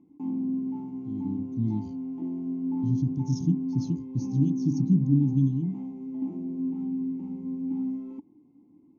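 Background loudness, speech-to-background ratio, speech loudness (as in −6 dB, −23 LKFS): −32.5 LKFS, 5.0 dB, −27.5 LKFS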